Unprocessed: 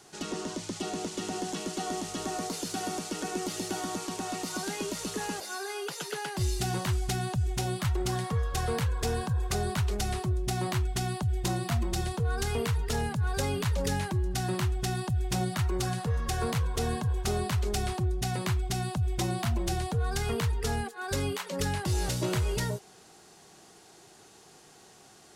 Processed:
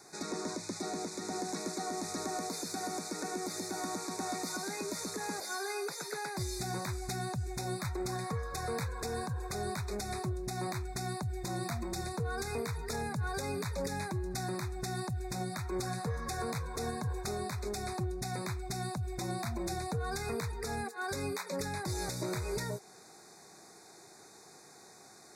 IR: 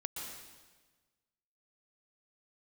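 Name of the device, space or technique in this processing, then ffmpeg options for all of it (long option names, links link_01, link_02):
PA system with an anti-feedback notch: -af "highpass=frequency=160:poles=1,asuperstop=centerf=3000:order=20:qfactor=2.9,alimiter=level_in=2.5dB:limit=-24dB:level=0:latency=1:release=213,volume=-2.5dB"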